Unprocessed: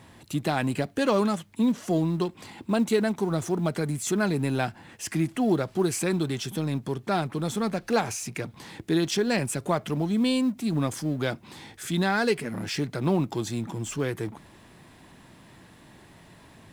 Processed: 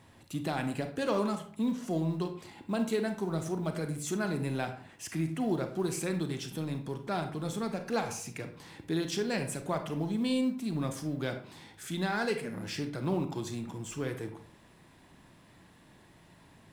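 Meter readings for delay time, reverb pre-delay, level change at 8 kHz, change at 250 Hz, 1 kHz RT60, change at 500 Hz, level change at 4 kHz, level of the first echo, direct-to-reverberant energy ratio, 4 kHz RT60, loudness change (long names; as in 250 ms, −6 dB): no echo audible, 30 ms, −7.0 dB, −6.5 dB, 0.50 s, −6.5 dB, −7.0 dB, no echo audible, 6.5 dB, 0.30 s, −6.5 dB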